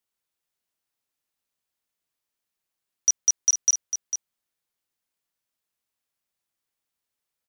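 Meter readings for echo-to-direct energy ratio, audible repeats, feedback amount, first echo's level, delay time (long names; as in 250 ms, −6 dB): −9.0 dB, 1, repeats not evenly spaced, −9.0 dB, 450 ms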